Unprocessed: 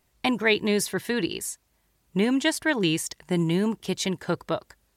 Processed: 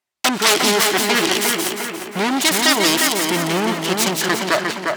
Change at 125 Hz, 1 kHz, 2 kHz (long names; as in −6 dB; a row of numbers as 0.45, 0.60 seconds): +0.5, +14.5, +10.5 decibels